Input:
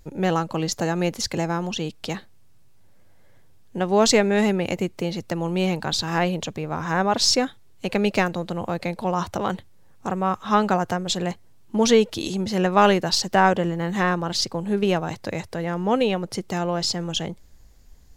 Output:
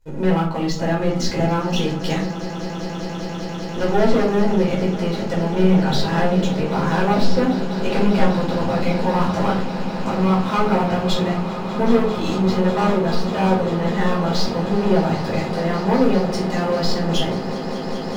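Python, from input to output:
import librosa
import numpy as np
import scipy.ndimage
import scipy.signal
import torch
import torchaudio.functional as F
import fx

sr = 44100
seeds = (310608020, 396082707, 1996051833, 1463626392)

p1 = fx.env_lowpass_down(x, sr, base_hz=1400.0, full_db=-16.0)
p2 = fx.leveller(p1, sr, passes=3)
p3 = fx.rider(p2, sr, range_db=10, speed_s=2.0)
p4 = p3 + fx.echo_swell(p3, sr, ms=198, loudest=8, wet_db=-16.0, dry=0)
p5 = fx.room_shoebox(p4, sr, seeds[0], volume_m3=310.0, walls='furnished', distance_m=4.8)
y = p5 * 10.0 ** (-15.5 / 20.0)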